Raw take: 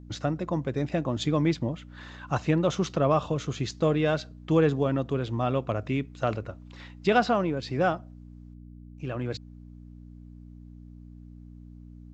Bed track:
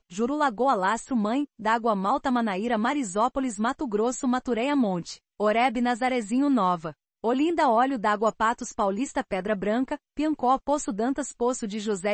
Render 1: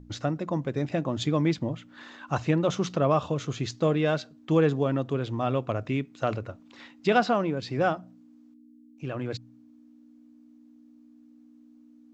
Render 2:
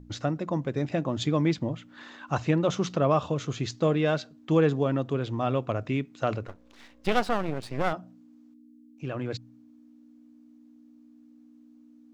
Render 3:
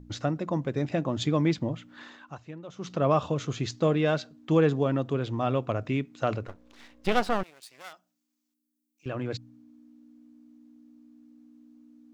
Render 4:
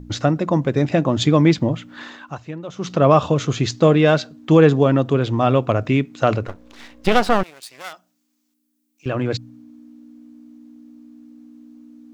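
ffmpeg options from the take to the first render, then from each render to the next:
-af "bandreject=f=60:t=h:w=4,bandreject=f=120:t=h:w=4,bandreject=f=180:t=h:w=4"
-filter_complex "[0:a]asettb=1/sr,asplit=3[s0][s1][s2];[s0]atrim=end=6.474[s3];[s1]atrim=start=6.47:end=7.93,asetpts=PTS-STARTPTS,afade=t=in:d=0.004:c=qsin,afade=t=out:st=1.456:d=0.004:c=qsin,aeval=exprs='max(val(0),0)':c=same[s4];[s2]atrim=start=7.926[s5];[s3][s4]acrossfade=d=0.004:c1=hsin:c2=qsin[s6];[s6][s5]acrossfade=d=0.004:c1=qsin:c2=hsin"
-filter_complex "[0:a]asettb=1/sr,asplit=3[s0][s1][s2];[s0]atrim=end=7.434[s3];[s1]atrim=start=7.43:end=9.06,asetpts=PTS-STARTPTS,afade=t=in:d=0.004:c=qsin,afade=t=out:st=1.626:d=0.004:c=qsin,aderivative[s4];[s2]atrim=start=9.056[s5];[s3][s4]acrossfade=d=0.004:c1=hsin:c2=qsin[s6];[s6][s5]acrossfade=d=0.004:c1=qsin:c2=hsin,asplit=3[s7][s8][s9];[s7]atrim=end=2.37,asetpts=PTS-STARTPTS,afade=t=out:st=2.03:d=0.34:silence=0.125893[s10];[s8]atrim=start=2.37:end=2.74,asetpts=PTS-STARTPTS,volume=0.126[s11];[s9]atrim=start=2.74,asetpts=PTS-STARTPTS,afade=t=in:d=0.34:silence=0.125893[s12];[s10][s11][s12]concat=n=3:v=0:a=1"
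-af "volume=3.35,alimiter=limit=0.794:level=0:latency=1"

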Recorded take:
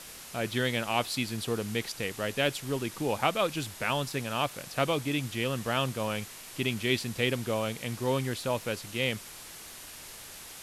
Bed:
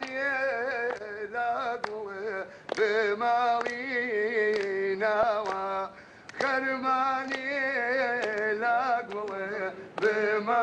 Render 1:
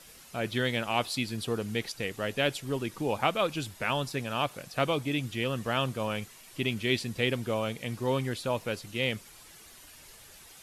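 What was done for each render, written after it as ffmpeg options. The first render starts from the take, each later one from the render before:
-af "afftdn=nr=9:nf=-46"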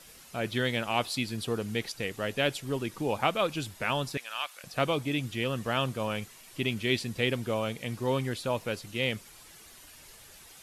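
-filter_complex "[0:a]asettb=1/sr,asplit=3[s0][s1][s2];[s0]atrim=end=4.174[s3];[s1]atrim=start=4.17:end=4.64,asetpts=PTS-STARTPTS,afade=t=in:d=0.004:c=qsin,afade=t=out:st=0.466:d=0.004:c=qsin,highpass=1300[s4];[s2]atrim=start=4.636[s5];[s3][s4]acrossfade=d=0.004:c1=hsin:c2=qsin[s6];[s6][s5]acrossfade=d=0.004:c1=qsin:c2=hsin"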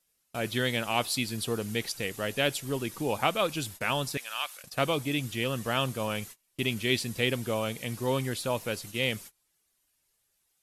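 -af "agate=range=0.0398:threshold=0.00562:ratio=16:detection=peak,highshelf=f=6700:g=10"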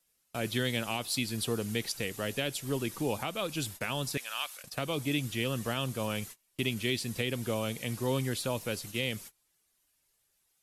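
-filter_complex "[0:a]alimiter=limit=0.141:level=0:latency=1:release=236,acrossover=split=400|3000[s0][s1][s2];[s1]acompressor=threshold=0.0141:ratio=2[s3];[s0][s3][s2]amix=inputs=3:normalize=0"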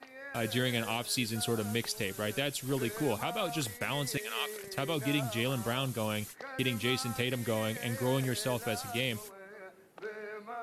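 -filter_complex "[1:a]volume=0.15[s0];[0:a][s0]amix=inputs=2:normalize=0"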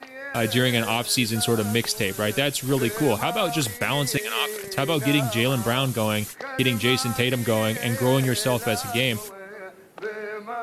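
-af "volume=3.16"

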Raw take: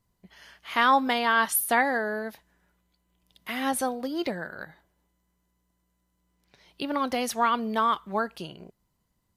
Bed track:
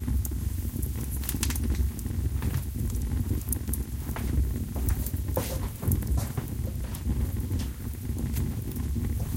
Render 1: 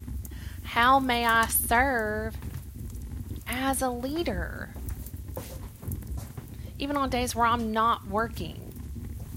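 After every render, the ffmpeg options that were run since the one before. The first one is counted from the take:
-filter_complex "[1:a]volume=0.376[s0];[0:a][s0]amix=inputs=2:normalize=0"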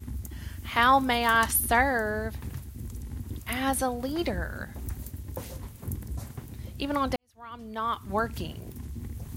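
-filter_complex "[0:a]asplit=2[s0][s1];[s0]atrim=end=7.16,asetpts=PTS-STARTPTS,afade=t=out:st=7.156:d=0.004:c=hsin[s2];[s1]atrim=start=7.16,asetpts=PTS-STARTPTS,afade=t=in:d=0.98:c=qua[s3];[s2][s3]concat=n=2:v=0:a=1"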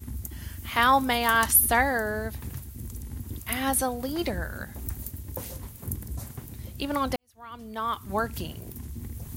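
-af "highshelf=f=8500:g=10"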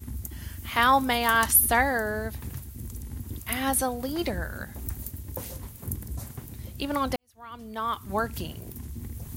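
-af anull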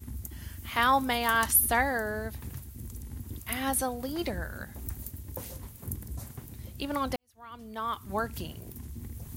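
-af "volume=0.668"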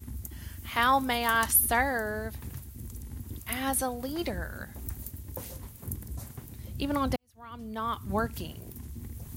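-filter_complex "[0:a]asettb=1/sr,asplit=3[s0][s1][s2];[s0]atrim=end=6.694[s3];[s1]atrim=start=6.69:end=8.27,asetpts=PTS-STARTPTS,afade=t=in:d=0.004:c=qsin,afade=t=out:st=1.576:d=0.004:c=qsin,equalizer=f=110:w=0.42:g=7.5[s4];[s2]atrim=start=8.266[s5];[s3][s4]acrossfade=d=0.004:c1=hsin:c2=qsin[s6];[s6][s5]acrossfade=d=0.004:c1=qsin:c2=hsin"

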